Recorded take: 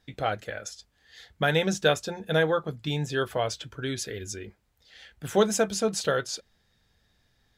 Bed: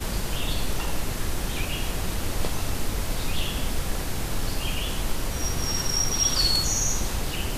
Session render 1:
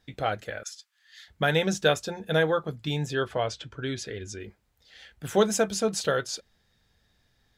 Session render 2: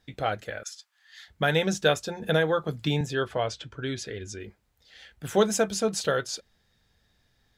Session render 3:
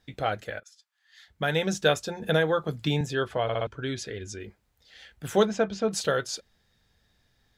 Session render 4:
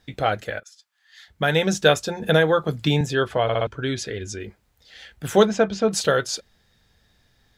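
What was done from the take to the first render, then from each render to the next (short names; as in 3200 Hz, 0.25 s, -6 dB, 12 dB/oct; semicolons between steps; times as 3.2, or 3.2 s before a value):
0.63–1.28 HPF 1200 Hz 24 dB/oct; 3.13–4.4 air absorption 63 m
0.72–1.27 bell 740 Hz +9 dB 1.6 oct; 2.22–3.01 three-band squash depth 70%
0.6–1.88 fade in, from -18 dB; 3.43 stutter in place 0.06 s, 4 plays; 5.45–5.91 air absorption 190 m
gain +6 dB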